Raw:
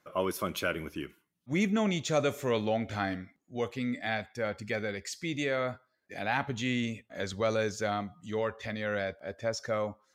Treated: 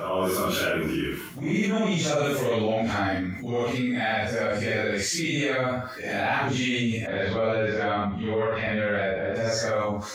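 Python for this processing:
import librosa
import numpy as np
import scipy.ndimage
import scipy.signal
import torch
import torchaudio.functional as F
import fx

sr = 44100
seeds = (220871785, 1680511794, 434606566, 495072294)

y = fx.phase_scramble(x, sr, seeds[0], window_ms=200)
y = fx.lowpass(y, sr, hz=3400.0, slope=24, at=(7.06, 9.34), fade=0.02)
y = fx.env_flatten(y, sr, amount_pct=70)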